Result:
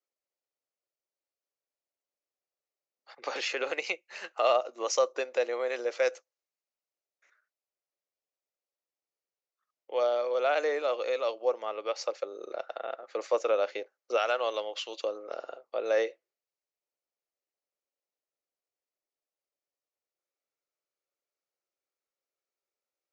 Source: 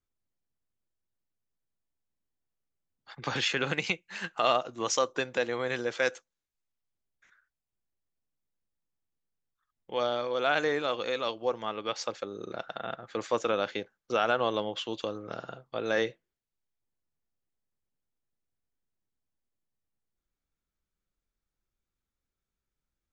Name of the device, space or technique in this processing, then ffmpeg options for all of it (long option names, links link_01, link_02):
phone speaker on a table: -filter_complex "[0:a]highpass=frequency=390:width=0.5412,highpass=frequency=390:width=1.3066,equalizer=frequency=570:width_type=q:width=4:gain=6,equalizer=frequency=970:width_type=q:width=4:gain=-4,equalizer=frequency=1600:width_type=q:width=4:gain=-7,equalizer=frequency=3400:width_type=q:width=4:gain=-9,lowpass=frequency=6700:width=0.5412,lowpass=frequency=6700:width=1.3066,asettb=1/sr,asplit=3[link_01][link_02][link_03];[link_01]atrim=end=14.174[link_04];[link_02]atrim=start=14.17:end=15.01,asetpts=PTS-STARTPTS,afade=type=in:duration=0.004:curve=qsin,afade=type=out:start_time=0.836:duration=0.004:curve=qsin,tiltshelf=frequency=1200:gain=-6.5[link_05];[link_03]atrim=start=15.006[link_06];[link_04][link_05]acrossfade=duration=0.004:curve1=hsin:curve2=qsin[link_07];[link_07][link_06]acrossfade=duration=0.004:curve1=qsin:curve2=hsin"